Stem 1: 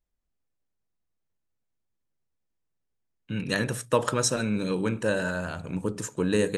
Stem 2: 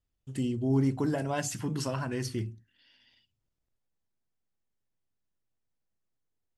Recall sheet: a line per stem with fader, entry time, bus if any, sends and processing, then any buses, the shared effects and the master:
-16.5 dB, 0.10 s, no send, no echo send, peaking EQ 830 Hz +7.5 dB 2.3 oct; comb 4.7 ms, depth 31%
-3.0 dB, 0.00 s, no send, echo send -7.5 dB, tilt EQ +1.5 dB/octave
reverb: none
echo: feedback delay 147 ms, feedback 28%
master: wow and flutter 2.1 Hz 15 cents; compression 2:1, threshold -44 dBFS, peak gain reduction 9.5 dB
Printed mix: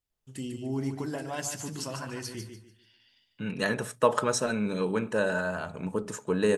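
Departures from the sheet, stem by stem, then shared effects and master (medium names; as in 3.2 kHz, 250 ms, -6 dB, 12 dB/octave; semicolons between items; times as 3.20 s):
stem 1 -16.5 dB -> -5.5 dB; master: missing compression 2:1, threshold -44 dBFS, peak gain reduction 9.5 dB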